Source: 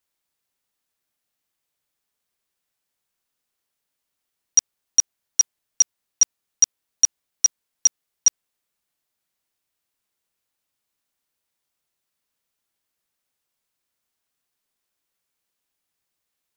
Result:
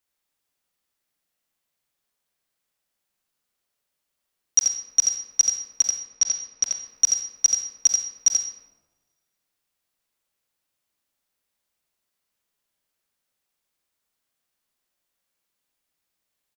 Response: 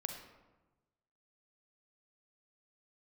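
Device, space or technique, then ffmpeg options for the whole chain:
bathroom: -filter_complex "[0:a]asplit=3[s0][s1][s2];[s0]afade=t=out:st=5.81:d=0.02[s3];[s1]lowpass=f=5900:w=0.5412,lowpass=f=5900:w=1.3066,afade=t=in:st=5.81:d=0.02,afade=t=out:st=6.63:d=0.02[s4];[s2]afade=t=in:st=6.63:d=0.02[s5];[s3][s4][s5]amix=inputs=3:normalize=0,aecho=1:1:85:0.562[s6];[1:a]atrim=start_sample=2205[s7];[s6][s7]afir=irnorm=-1:irlink=0"

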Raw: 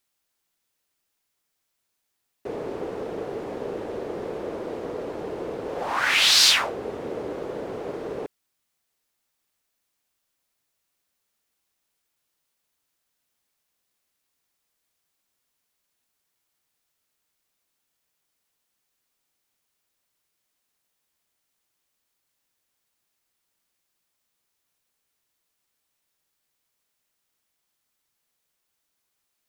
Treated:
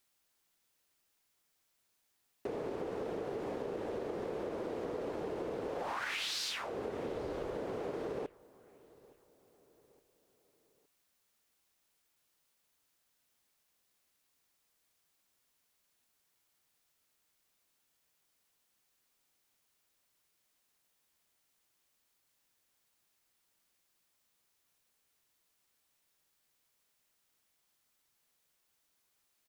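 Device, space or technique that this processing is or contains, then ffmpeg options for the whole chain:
serial compression, peaks first: -filter_complex "[0:a]asplit=3[s0][s1][s2];[s0]afade=t=out:st=7.08:d=0.02[s3];[s1]asubboost=boost=3:cutoff=98,afade=t=in:st=7.08:d=0.02,afade=t=out:st=7.55:d=0.02[s4];[s2]afade=t=in:st=7.55:d=0.02[s5];[s3][s4][s5]amix=inputs=3:normalize=0,acompressor=threshold=0.0355:ratio=6,acompressor=threshold=0.0126:ratio=2.5,asplit=2[s6][s7];[s7]adelay=866,lowpass=f=2800:p=1,volume=0.0708,asplit=2[s8][s9];[s9]adelay=866,lowpass=f=2800:p=1,volume=0.48,asplit=2[s10][s11];[s11]adelay=866,lowpass=f=2800:p=1,volume=0.48[s12];[s6][s8][s10][s12]amix=inputs=4:normalize=0"

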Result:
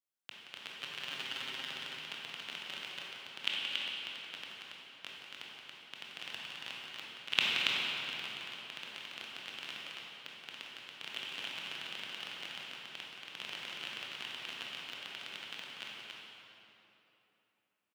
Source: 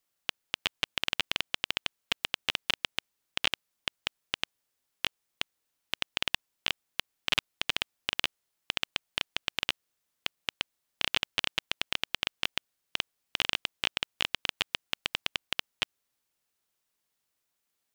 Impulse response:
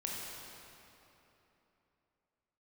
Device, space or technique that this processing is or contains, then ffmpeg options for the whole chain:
stadium PA: -filter_complex "[0:a]agate=range=0.0355:threshold=0.0562:ratio=16:detection=peak,asettb=1/sr,asplit=3[s0][s1][s2];[s0]atrim=end=0.814[s3];[s1]atrim=start=0.81:end=1.66,asetpts=PTS-STARTPTS,afade=t=in:d=0.004:c=qsin,afade=t=out:st=0.846:d=0.004:c=qsin,aecho=1:1:7.5:0.86,atrim=end_sample=37485[s4];[s2]atrim=start=1.656[s5];[s3][s4]acrossfade=d=0.004:c1=hsin:c2=qsin[s6];[s6][s5]acrossfade=d=0.004:c1=qsin:c2=hsin,highpass=f=130:w=0.5412,highpass=f=130:w=1.3066,equalizer=f=1500:t=o:w=0.36:g=3,aecho=1:1:174.9|279.9:0.355|0.631[s7];[1:a]atrim=start_sample=2205[s8];[s7][s8]afir=irnorm=-1:irlink=0,volume=5.62"

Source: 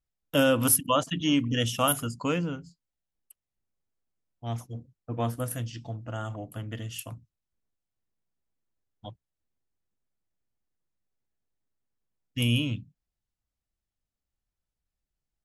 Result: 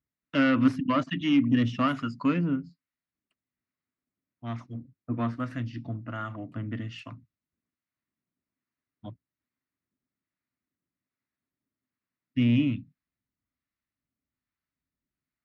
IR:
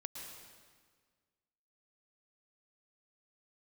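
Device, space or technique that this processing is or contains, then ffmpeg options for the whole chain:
guitar amplifier with harmonic tremolo: -filter_complex "[0:a]acrossover=split=710[s0][s1];[s0]aeval=exprs='val(0)*(1-0.5/2+0.5/2*cos(2*PI*1.2*n/s))':c=same[s2];[s1]aeval=exprs='val(0)*(1-0.5/2-0.5/2*cos(2*PI*1.2*n/s))':c=same[s3];[s2][s3]amix=inputs=2:normalize=0,asoftclip=type=tanh:threshold=0.0794,highpass=100,equalizer=f=260:t=q:w=4:g=9,equalizer=f=480:t=q:w=4:g=-9,equalizer=f=800:t=q:w=4:g=-9,equalizer=f=1200:t=q:w=4:g=3,equalizer=f=2000:t=q:w=4:g=5,equalizer=f=3200:t=q:w=4:g=-9,lowpass=f=4000:w=0.5412,lowpass=f=4000:w=1.3066,volume=1.58"

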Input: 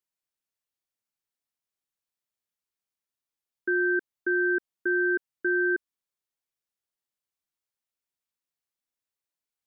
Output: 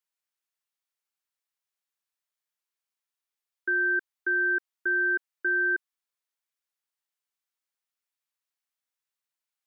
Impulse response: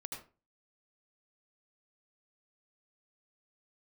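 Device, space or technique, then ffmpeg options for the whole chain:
filter by subtraction: -filter_complex "[0:a]asplit=2[s0][s1];[s1]lowpass=1300,volume=-1[s2];[s0][s2]amix=inputs=2:normalize=0"

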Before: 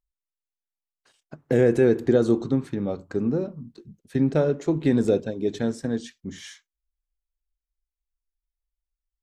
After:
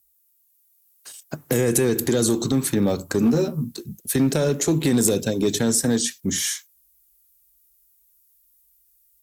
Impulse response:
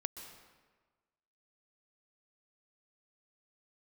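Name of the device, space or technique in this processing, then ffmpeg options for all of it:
FM broadcast chain: -filter_complex "[0:a]asettb=1/sr,asplit=3[s0][s1][s2];[s0]atrim=end=3.214[s3];[s1]atrim=start=3.21:end=3.64,asetpts=PTS-STARTPTS,afade=t=in:d=0.004:c=qsin,afade=t=out:st=0.426:d=0.004:c=qsin,asplit=2[s4][s5];[s5]adelay=13,volume=0.75[s6];[s4][s6]amix=inputs=2:normalize=0,atrim=end_sample=18963[s7];[s2]atrim=start=3.636[s8];[s3][s7]acrossfade=d=0.004:c1=hsin:c2=qsin[s9];[s9][s8]acrossfade=d=0.004:c1=qsin:c2=hsin,highpass=47,dynaudnorm=f=460:g=3:m=1.5,acrossover=split=250|1900[s10][s11][s12];[s10]acompressor=threshold=0.0447:ratio=4[s13];[s11]acompressor=threshold=0.0501:ratio=4[s14];[s12]acompressor=threshold=0.00794:ratio=4[s15];[s13][s14][s15]amix=inputs=3:normalize=0,aemphasis=mode=production:type=50fm,alimiter=limit=0.126:level=0:latency=1:release=24,asoftclip=type=hard:threshold=0.1,lowpass=f=15000:w=0.5412,lowpass=f=15000:w=1.3066,aemphasis=mode=production:type=50fm,volume=2.37"

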